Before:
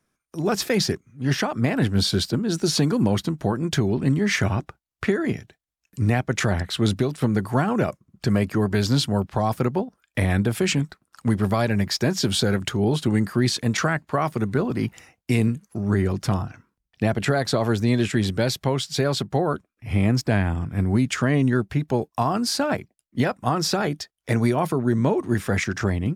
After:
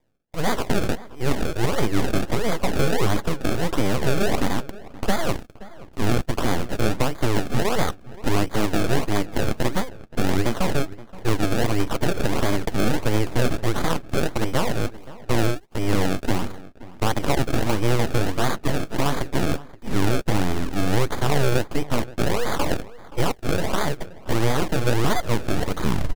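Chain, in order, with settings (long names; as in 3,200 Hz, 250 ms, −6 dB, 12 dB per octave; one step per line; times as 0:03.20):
turntable brake at the end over 0.38 s
in parallel at −1 dB: brickwall limiter −20 dBFS, peak gain reduction 10.5 dB
on the sum: sample-and-hold swept by an LFO 31×, swing 100% 1.5 Hz
full-wave rectification
slap from a distant wall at 90 metres, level −18 dB
highs frequency-modulated by the lows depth 0.1 ms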